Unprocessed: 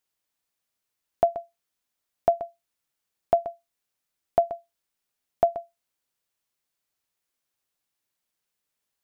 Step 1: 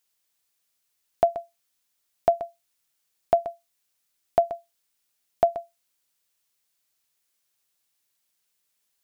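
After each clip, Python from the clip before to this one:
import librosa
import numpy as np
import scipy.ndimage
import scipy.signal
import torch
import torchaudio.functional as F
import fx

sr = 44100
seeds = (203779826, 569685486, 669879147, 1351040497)

y = fx.high_shelf(x, sr, hz=2200.0, db=8.5)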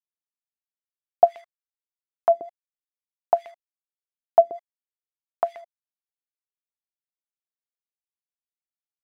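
y = fx.quant_dither(x, sr, seeds[0], bits=8, dither='none')
y = fx.filter_lfo_bandpass(y, sr, shape='sine', hz=2.4, low_hz=340.0, high_hz=2500.0, q=2.6)
y = F.gain(torch.from_numpy(y), 7.0).numpy()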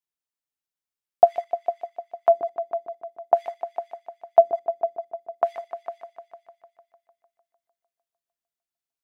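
y = fx.echo_heads(x, sr, ms=151, heads='all three', feedback_pct=44, wet_db=-14.0)
y = F.gain(torch.from_numpy(y), 1.5).numpy()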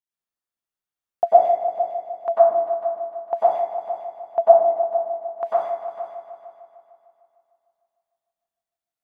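y = fx.rev_plate(x, sr, seeds[1], rt60_s=0.82, hf_ratio=0.3, predelay_ms=85, drr_db=-8.5)
y = F.gain(torch.from_numpy(y), -7.5).numpy()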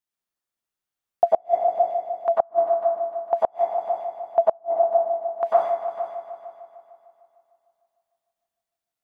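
y = fx.gate_flip(x, sr, shuts_db=-8.0, range_db=-36)
y = F.gain(torch.from_numpy(y), 2.5).numpy()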